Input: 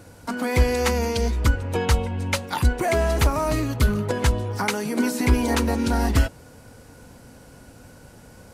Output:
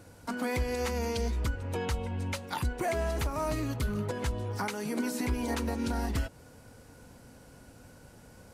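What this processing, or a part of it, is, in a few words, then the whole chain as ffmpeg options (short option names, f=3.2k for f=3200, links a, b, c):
stacked limiters: -af "alimiter=limit=-12dB:level=0:latency=1:release=210,alimiter=limit=-15.5dB:level=0:latency=1:release=140,volume=-6.5dB"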